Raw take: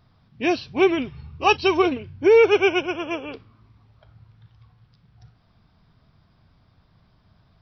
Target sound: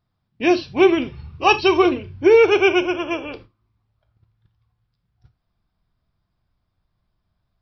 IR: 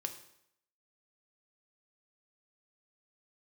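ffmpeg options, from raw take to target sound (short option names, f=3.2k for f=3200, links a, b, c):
-filter_complex "[0:a]agate=range=-18dB:threshold=-45dB:ratio=16:detection=peak,asubboost=boost=2.5:cutoff=65,asplit=2[a][b];[1:a]atrim=start_sample=2205,atrim=end_sample=3969[c];[b][c]afir=irnorm=-1:irlink=0,volume=4dB[d];[a][d]amix=inputs=2:normalize=0,volume=-4.5dB"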